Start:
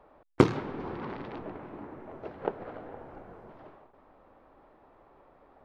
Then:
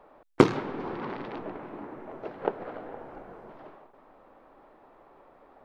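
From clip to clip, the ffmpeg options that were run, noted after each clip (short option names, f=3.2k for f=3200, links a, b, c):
-af "equalizer=f=67:t=o:w=1.7:g=-11.5,volume=3.5dB"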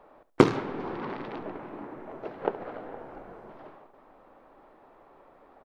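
-af "aecho=1:1:70|140:0.158|0.0333"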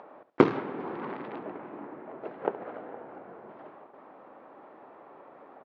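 -af "acompressor=mode=upward:threshold=-41dB:ratio=2.5,highpass=160,lowpass=2.7k,volume=-1dB"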